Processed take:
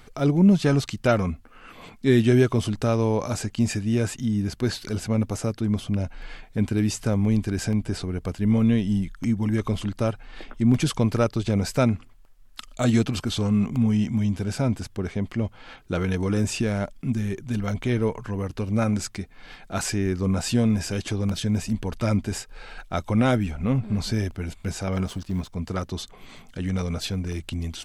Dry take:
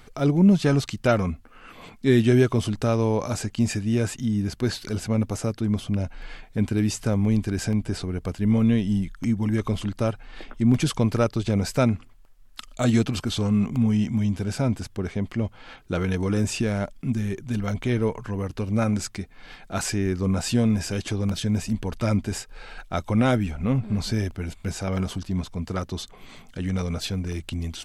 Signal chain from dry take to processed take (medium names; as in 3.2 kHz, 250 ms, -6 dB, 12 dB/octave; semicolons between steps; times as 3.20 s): 25.06–25.55 s: companding laws mixed up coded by A